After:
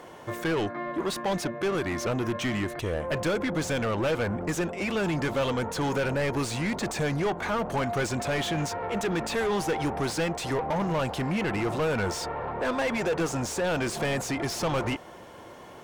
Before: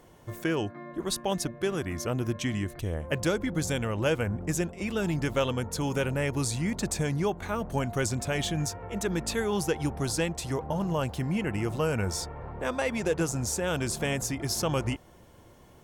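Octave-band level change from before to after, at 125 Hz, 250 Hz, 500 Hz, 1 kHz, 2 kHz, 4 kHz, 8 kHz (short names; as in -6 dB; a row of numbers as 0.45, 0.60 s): -1.5, +1.0, +2.5, +5.0, +3.5, +1.0, -3.5 dB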